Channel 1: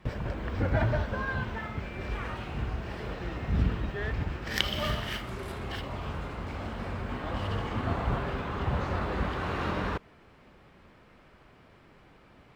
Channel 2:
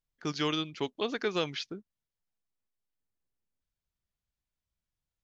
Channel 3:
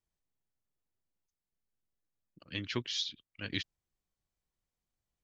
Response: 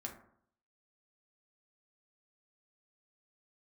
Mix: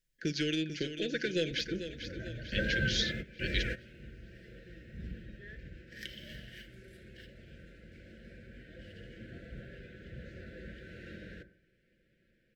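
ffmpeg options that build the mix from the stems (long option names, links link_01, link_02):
-filter_complex "[0:a]acontrast=81,adelay=1450,volume=-6.5dB,asplit=2[link_01][link_02];[link_02]volume=-22.5dB[link_03];[1:a]asoftclip=type=tanh:threshold=-21dB,acompressor=threshold=-37dB:ratio=2,volume=2.5dB,asplit=3[link_04][link_05][link_06];[link_05]volume=-10.5dB[link_07];[link_06]volume=-9dB[link_08];[2:a]highpass=610,volume=1.5dB,asplit=2[link_09][link_10];[link_10]apad=whole_len=617679[link_11];[link_01][link_11]sidechaingate=range=-20dB:threshold=-51dB:ratio=16:detection=peak[link_12];[3:a]atrim=start_sample=2205[link_13];[link_03][link_07]amix=inputs=2:normalize=0[link_14];[link_14][link_13]afir=irnorm=-1:irlink=0[link_15];[link_08]aecho=0:1:444|888|1332|1776|2220|2664|3108:1|0.5|0.25|0.125|0.0625|0.0312|0.0156[link_16];[link_12][link_04][link_09][link_15][link_16]amix=inputs=5:normalize=0,asuperstop=centerf=980:order=12:qfactor=0.97,equalizer=frequency=1400:width_type=o:width=0.42:gain=11,aecho=1:1:5.9:0.41"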